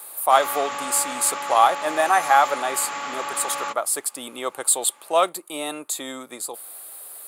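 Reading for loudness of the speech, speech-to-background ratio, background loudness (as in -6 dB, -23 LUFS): -22.5 LUFS, 7.0 dB, -29.5 LUFS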